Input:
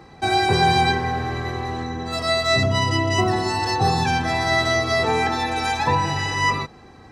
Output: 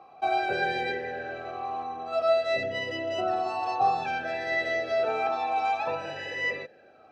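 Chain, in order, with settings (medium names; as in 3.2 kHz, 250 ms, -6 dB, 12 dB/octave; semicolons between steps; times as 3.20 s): talking filter a-e 0.54 Hz; trim +5 dB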